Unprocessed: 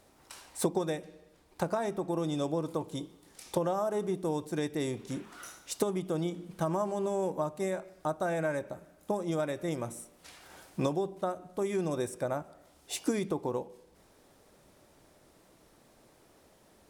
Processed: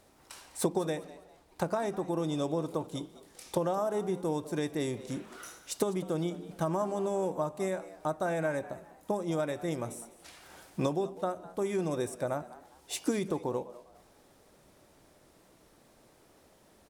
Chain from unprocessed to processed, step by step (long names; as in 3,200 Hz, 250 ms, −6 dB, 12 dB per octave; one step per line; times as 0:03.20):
echo with shifted repeats 202 ms, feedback 31%, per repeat +110 Hz, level −18 dB